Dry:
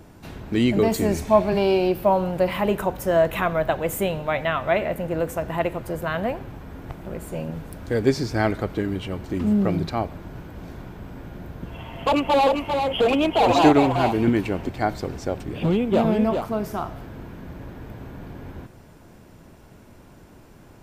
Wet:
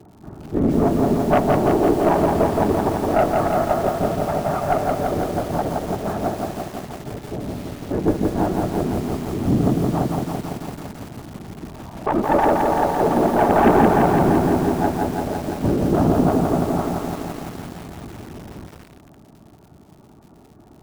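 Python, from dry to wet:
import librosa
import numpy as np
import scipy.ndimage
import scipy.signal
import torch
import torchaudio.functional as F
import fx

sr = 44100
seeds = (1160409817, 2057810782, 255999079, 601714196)

p1 = fx.cvsd(x, sr, bps=32000)
p2 = scipy.signal.sosfilt(scipy.signal.butter(4, 1200.0, 'lowpass', fs=sr, output='sos'), p1)
p3 = fx.low_shelf(p2, sr, hz=92.0, db=-2.0)
p4 = fx.whisperise(p3, sr, seeds[0])
p5 = fx.notch_comb(p4, sr, f0_hz=510.0)
p6 = fx.dmg_crackle(p5, sr, seeds[1], per_s=170.0, level_db=-45.0)
p7 = p6 + fx.echo_feedback(p6, sr, ms=181, feedback_pct=58, wet_db=-17, dry=0)
p8 = fx.cheby_harmonics(p7, sr, harmonics=(3, 4, 5, 6), levels_db=(-27, -27, -15, -15), full_scale_db=-3.0)
p9 = fx.echo_crushed(p8, sr, ms=169, feedback_pct=80, bits=6, wet_db=-3)
y = p9 * librosa.db_to_amplitude(-2.5)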